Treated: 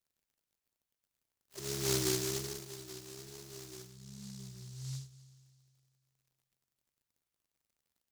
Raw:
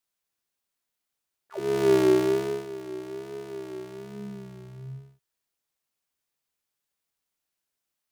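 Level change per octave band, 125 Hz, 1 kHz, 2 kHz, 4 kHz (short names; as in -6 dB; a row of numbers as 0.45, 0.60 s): -3.5, -14.0, -8.0, +2.5 dB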